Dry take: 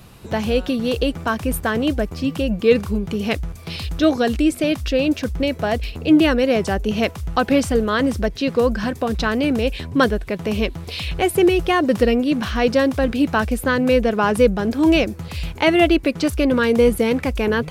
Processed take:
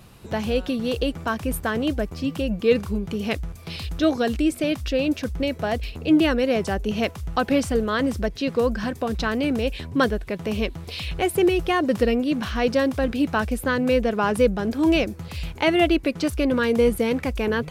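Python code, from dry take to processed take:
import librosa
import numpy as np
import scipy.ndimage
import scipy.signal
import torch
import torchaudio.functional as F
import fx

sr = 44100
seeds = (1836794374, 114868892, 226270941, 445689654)

y = fx.vibrato(x, sr, rate_hz=2.3, depth_cents=13.0)
y = F.gain(torch.from_numpy(y), -4.0).numpy()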